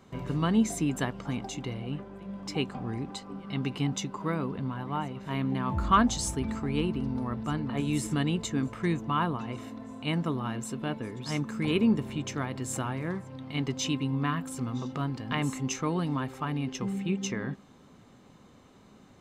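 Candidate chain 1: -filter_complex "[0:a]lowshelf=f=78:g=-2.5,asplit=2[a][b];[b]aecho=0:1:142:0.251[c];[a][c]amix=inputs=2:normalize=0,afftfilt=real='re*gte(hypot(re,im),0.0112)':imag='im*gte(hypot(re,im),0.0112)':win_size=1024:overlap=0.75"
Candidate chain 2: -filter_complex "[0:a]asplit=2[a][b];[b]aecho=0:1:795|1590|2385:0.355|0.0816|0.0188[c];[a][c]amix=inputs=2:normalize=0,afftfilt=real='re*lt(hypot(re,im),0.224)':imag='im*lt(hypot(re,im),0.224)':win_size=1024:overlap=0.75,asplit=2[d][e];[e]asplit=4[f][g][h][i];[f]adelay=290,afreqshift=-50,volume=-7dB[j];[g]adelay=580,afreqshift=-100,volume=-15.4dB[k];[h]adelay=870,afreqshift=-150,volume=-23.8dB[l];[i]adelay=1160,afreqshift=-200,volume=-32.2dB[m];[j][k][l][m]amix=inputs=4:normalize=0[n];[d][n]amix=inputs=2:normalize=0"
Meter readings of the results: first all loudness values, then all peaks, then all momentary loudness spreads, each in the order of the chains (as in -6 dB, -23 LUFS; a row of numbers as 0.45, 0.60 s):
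-31.0, -34.0 LUFS; -10.5, -14.5 dBFS; 10, 4 LU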